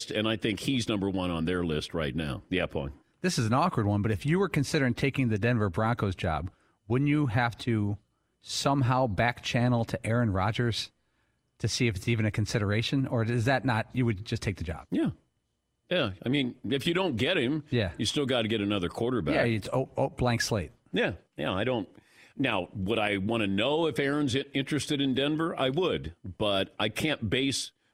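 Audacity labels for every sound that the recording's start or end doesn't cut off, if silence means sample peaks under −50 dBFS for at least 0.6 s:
11.600000	15.150000	sound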